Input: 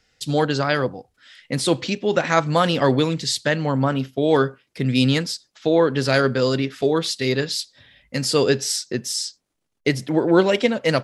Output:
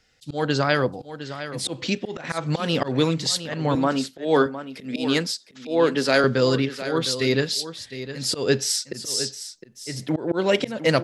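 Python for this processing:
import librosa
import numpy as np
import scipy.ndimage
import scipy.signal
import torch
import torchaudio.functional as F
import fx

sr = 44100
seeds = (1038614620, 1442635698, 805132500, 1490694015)

y = fx.steep_highpass(x, sr, hz=170.0, slope=36, at=(3.75, 6.24))
y = fx.auto_swell(y, sr, attack_ms=195.0)
y = y + 10.0 ** (-12.0 / 20.0) * np.pad(y, (int(710 * sr / 1000.0), 0))[:len(y)]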